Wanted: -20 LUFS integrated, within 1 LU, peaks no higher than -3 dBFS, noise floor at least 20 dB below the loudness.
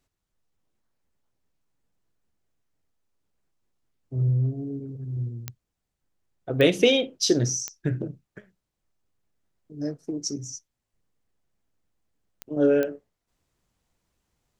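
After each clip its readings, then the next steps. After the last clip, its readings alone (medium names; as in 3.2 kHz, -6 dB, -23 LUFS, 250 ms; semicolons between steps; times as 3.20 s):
clicks found 5; loudness -25.5 LUFS; peak level -5.5 dBFS; loudness target -20.0 LUFS
-> de-click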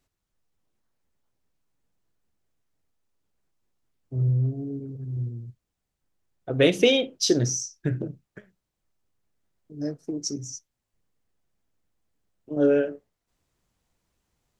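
clicks found 0; loudness -25.5 LUFS; peak level -6.0 dBFS; loudness target -20.0 LUFS
-> trim +5.5 dB; peak limiter -3 dBFS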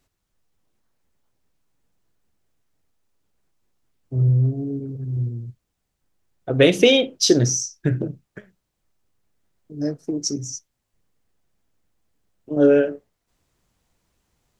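loudness -20.5 LUFS; peak level -3.0 dBFS; noise floor -77 dBFS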